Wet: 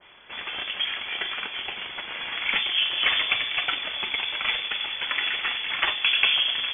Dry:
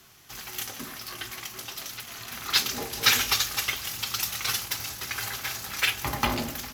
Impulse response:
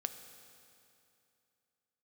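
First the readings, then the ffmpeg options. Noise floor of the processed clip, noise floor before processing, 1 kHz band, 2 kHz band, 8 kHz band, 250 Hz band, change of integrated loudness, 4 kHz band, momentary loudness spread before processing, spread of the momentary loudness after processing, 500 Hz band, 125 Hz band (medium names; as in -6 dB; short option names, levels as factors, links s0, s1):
-38 dBFS, -44 dBFS, -0.5 dB, +5.5 dB, under -40 dB, -10.0 dB, +3.5 dB, +6.0 dB, 14 LU, 12 LU, -2.0 dB, under -10 dB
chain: -filter_complex "[0:a]aeval=exprs='0.596*(cos(1*acos(clip(val(0)/0.596,-1,1)))-cos(1*PI/2))+0.0211*(cos(8*acos(clip(val(0)/0.596,-1,1)))-cos(8*PI/2))':c=same,acrossover=split=82|1200[s0][s1][s2];[s0]acompressor=threshold=0.00398:ratio=4[s3];[s1]acompressor=threshold=0.0178:ratio=4[s4];[s2]acompressor=threshold=0.0112:ratio=4[s5];[s3][s4][s5]amix=inputs=3:normalize=0,asplit=2[s6][s7];[1:a]atrim=start_sample=2205,adelay=41[s8];[s7][s8]afir=irnorm=-1:irlink=0,volume=0.178[s9];[s6][s9]amix=inputs=2:normalize=0,lowpass=f=3000:t=q:w=0.5098,lowpass=f=3000:t=q:w=0.6013,lowpass=f=3000:t=q:w=0.9,lowpass=f=3000:t=q:w=2.563,afreqshift=-3500,adynamicequalizer=threshold=0.00316:dfrequency=1800:dqfactor=0.7:tfrequency=1800:tqfactor=0.7:attack=5:release=100:ratio=0.375:range=4:mode=boostabove:tftype=highshelf,volume=2.37"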